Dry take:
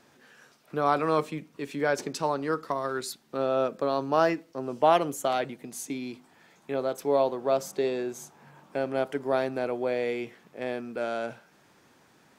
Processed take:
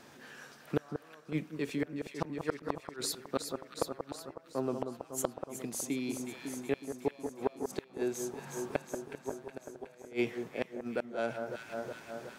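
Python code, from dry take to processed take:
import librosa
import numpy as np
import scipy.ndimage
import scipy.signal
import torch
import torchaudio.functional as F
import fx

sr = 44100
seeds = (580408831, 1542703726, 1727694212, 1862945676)

y = fx.gate_flip(x, sr, shuts_db=-20.0, range_db=-38)
y = fx.echo_alternate(y, sr, ms=184, hz=1500.0, feedback_pct=78, wet_db=-7.5)
y = fx.rider(y, sr, range_db=4, speed_s=0.5)
y = F.gain(torch.from_numpy(y), 2.5).numpy()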